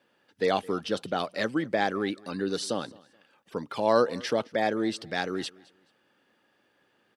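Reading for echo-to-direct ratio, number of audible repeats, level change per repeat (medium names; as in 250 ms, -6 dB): -23.0 dB, 2, -11.0 dB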